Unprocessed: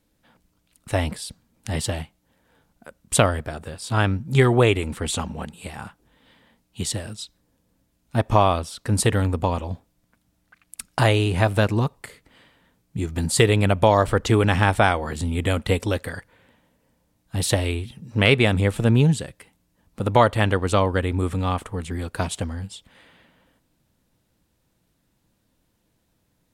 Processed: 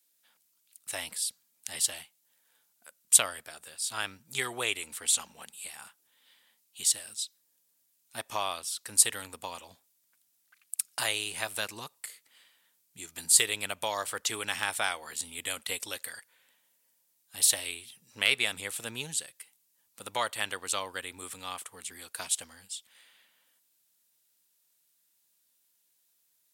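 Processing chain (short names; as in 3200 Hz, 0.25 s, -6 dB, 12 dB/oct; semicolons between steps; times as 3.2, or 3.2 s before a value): differentiator; gain +3.5 dB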